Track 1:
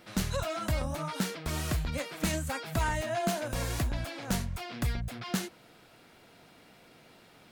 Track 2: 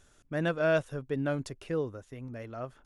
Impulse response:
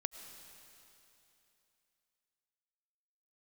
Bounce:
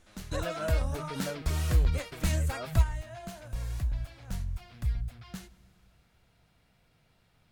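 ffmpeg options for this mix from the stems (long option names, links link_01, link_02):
-filter_complex "[0:a]asubboost=boost=9:cutoff=100,volume=-3dB,asplit=2[link_01][link_02];[link_02]volume=-20dB[link_03];[1:a]acompressor=threshold=-30dB:ratio=6,flanger=delay=0.9:depth=2.4:regen=22:speed=1.7:shape=triangular,volume=0.5dB,asplit=2[link_04][link_05];[link_05]apad=whole_len=331206[link_06];[link_01][link_06]sidechaingate=range=-12dB:threshold=-56dB:ratio=16:detection=peak[link_07];[2:a]atrim=start_sample=2205[link_08];[link_03][link_08]afir=irnorm=-1:irlink=0[link_09];[link_07][link_04][link_09]amix=inputs=3:normalize=0"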